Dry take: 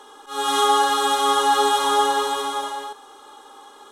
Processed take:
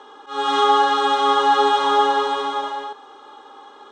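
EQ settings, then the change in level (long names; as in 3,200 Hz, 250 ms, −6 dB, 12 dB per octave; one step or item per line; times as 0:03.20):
high-pass filter 95 Hz 6 dB per octave
high-frequency loss of the air 150 metres
high-shelf EQ 9,400 Hz −4.5 dB
+3.0 dB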